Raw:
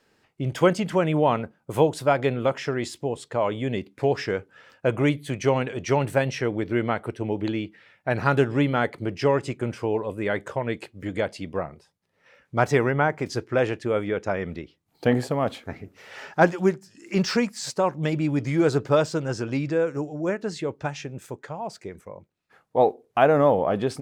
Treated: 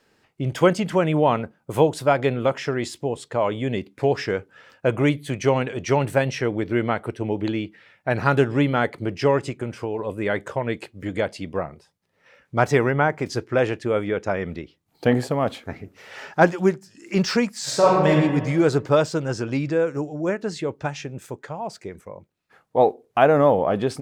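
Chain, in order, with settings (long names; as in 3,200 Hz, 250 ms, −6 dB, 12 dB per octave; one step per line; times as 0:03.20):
0:09.49–0:09.99: downward compressor 2 to 1, threshold −29 dBFS, peak gain reduction 5.5 dB
0:17.63–0:18.10: thrown reverb, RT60 1.4 s, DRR −5.5 dB
level +2 dB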